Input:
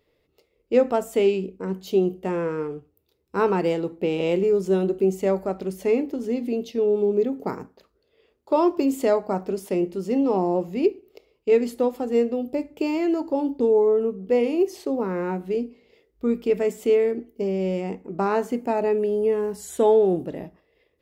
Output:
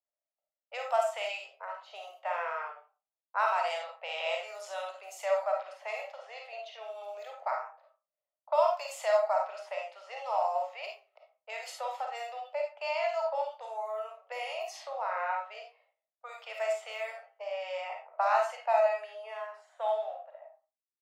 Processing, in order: ending faded out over 2.28 s; gate with hold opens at -42 dBFS; low-pass opened by the level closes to 790 Hz, open at -16 dBFS; compressor, threshold -20 dBFS, peak gain reduction 8 dB; steep high-pass 610 Hz 72 dB/oct; reverb RT60 0.30 s, pre-delay 10 ms, DRR 0.5 dB

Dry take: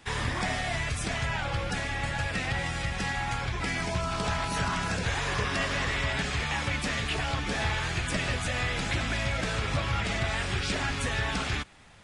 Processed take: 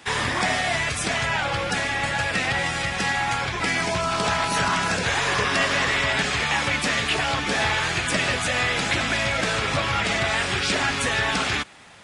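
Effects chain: HPF 260 Hz 6 dB/oct; gain +8.5 dB

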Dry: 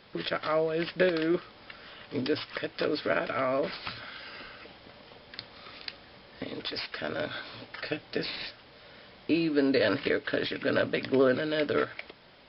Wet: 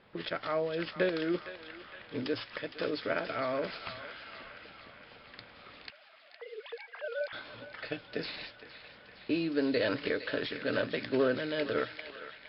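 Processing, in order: 5.9–7.33 sine-wave speech; thinning echo 0.462 s, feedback 84%, high-pass 1200 Hz, level -9 dB; low-pass opened by the level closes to 2500 Hz, open at -22 dBFS; gain -4.5 dB

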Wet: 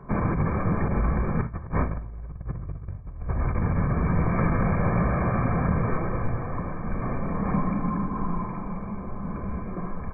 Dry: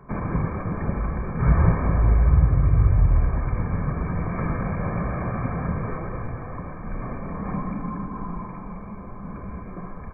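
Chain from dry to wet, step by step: negative-ratio compressor -24 dBFS, ratio -0.5; on a send at -14 dB: reverb, pre-delay 5 ms; on the sum: mismatched tape noise reduction decoder only

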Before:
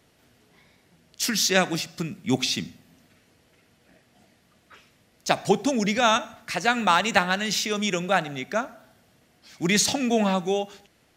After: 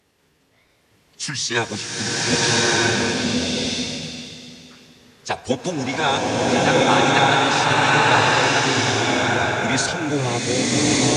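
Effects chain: low shelf 73 Hz -7 dB; formant-preserving pitch shift -8 st; bloom reverb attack 1.27 s, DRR -7.5 dB

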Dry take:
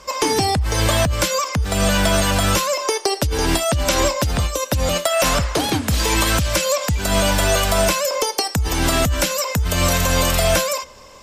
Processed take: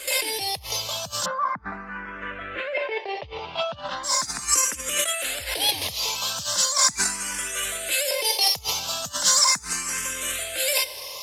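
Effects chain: CVSD 64 kbps; 1.24–4.03 LPF 1500 Hz -> 3000 Hz 24 dB/oct; negative-ratio compressor -26 dBFS, ratio -1; tilt +4 dB/oct; endless phaser +0.38 Hz

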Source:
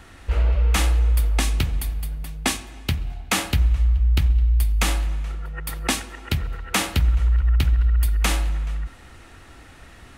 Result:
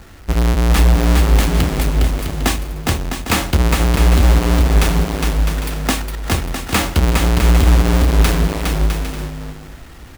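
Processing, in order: half-waves squared off; bouncing-ball echo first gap 0.41 s, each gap 0.6×, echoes 5

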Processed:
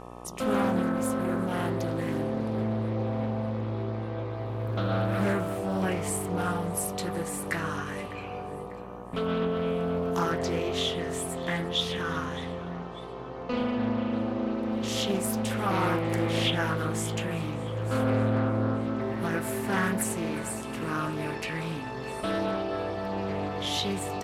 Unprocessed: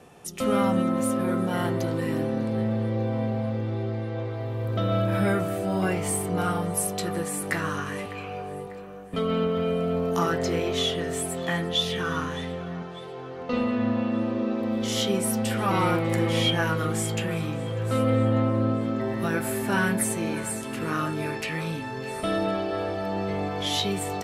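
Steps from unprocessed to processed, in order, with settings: buzz 60 Hz, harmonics 21, -41 dBFS -1 dB/oct; Doppler distortion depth 0.4 ms; gain -3 dB

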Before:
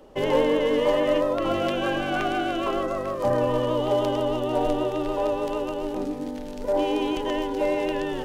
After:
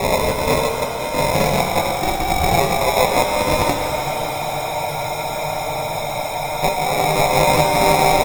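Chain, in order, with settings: octaver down 1 oct, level +2 dB; notches 60/120/180/240/300/360/420/480 Hz; comb 1.7 ms, depth 44%; small resonant body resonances 860/1500/3100 Hz, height 16 dB, ringing for 20 ms; on a send: reverse echo 0.178 s -4.5 dB; on the sum: LFO low-pass sine 0.95 Hz 710–2500 Hz; sample-and-hold 29×; negative-ratio compressor -18 dBFS, ratio -0.5; spectral freeze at 3.81, 2.81 s; shimmer reverb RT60 3.1 s, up +7 st, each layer -8 dB, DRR 4 dB

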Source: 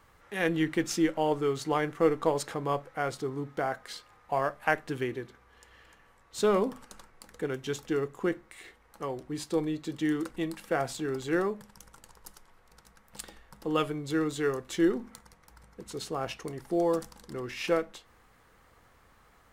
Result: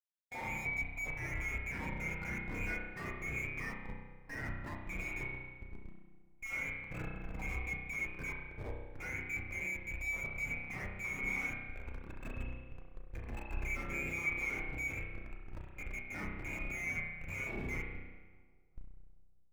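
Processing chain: in parallel at -1 dB: limiter -20.5 dBFS, peak gain reduction 11 dB; on the sum: compressor 16:1, threshold -36 dBFS, peak gain reduction 21 dB; inverted band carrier 2600 Hz; Schmitt trigger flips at -41.5 dBFS; on a send: analogue delay 0.198 s, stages 2048, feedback 74%, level -17 dB; on the sum: spring tank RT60 1.9 s, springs 32 ms, chirp 70 ms, DRR -2 dB; spectral expander 1.5:1; gain +3.5 dB

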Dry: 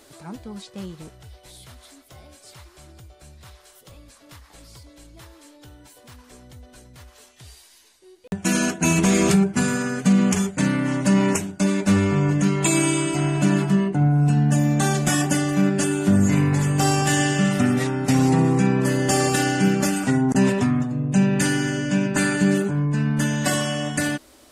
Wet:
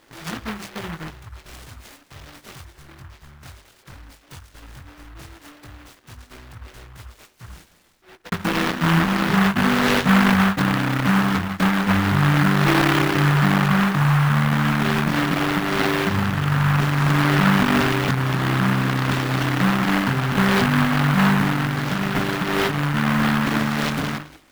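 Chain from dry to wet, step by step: formant sharpening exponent 1.5; gate -48 dBFS, range -9 dB; notches 50/100/150/200/250/300/350 Hz; treble ducked by the level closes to 340 Hz, closed at -20.5 dBFS; dynamic EQ 480 Hz, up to +7 dB, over -47 dBFS, Q 4.2; limiter -17.5 dBFS, peak gain reduction 7.5 dB; chorus 0.13 Hz, delay 18 ms, depth 3.7 ms; sample-and-hold 9×; noise-modulated delay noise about 1200 Hz, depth 0.43 ms; gain +8.5 dB

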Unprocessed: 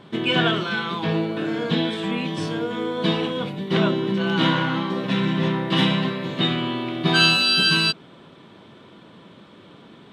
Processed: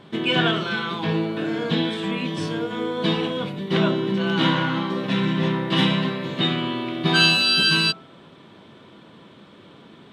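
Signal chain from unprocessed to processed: de-hum 60.11 Hz, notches 25

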